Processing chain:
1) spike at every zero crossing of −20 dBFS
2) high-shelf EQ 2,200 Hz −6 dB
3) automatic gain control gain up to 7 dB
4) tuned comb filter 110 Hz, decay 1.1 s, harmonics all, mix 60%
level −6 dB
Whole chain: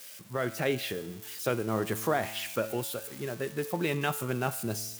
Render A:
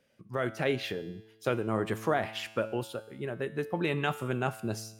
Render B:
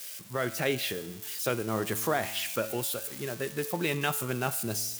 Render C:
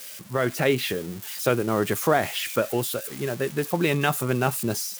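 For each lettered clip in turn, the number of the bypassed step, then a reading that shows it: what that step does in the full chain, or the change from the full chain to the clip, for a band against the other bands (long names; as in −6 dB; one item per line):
1, distortion level −7 dB
2, 8 kHz band +5.0 dB
4, change in integrated loudness +7.0 LU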